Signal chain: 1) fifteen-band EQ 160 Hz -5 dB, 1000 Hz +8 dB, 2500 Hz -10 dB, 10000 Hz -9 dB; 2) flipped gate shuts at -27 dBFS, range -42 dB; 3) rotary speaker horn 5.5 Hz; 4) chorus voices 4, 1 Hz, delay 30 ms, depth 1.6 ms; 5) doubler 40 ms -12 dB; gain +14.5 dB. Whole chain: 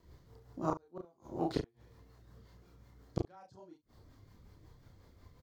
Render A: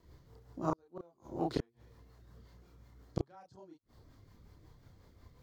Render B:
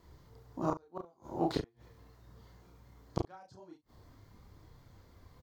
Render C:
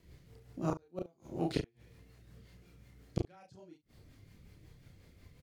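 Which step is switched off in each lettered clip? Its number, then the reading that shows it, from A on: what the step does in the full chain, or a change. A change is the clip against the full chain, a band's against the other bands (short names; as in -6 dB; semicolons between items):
5, momentary loudness spread change +2 LU; 3, 4 kHz band +2.0 dB; 1, 1 kHz band -7.0 dB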